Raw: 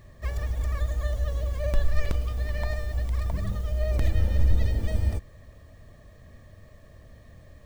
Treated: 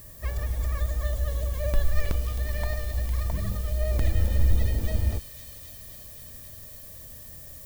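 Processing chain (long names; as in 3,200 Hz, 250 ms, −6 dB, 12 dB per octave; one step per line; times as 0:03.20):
background noise violet −48 dBFS
delay with a high-pass on its return 264 ms, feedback 83%, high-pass 3,700 Hz, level −5 dB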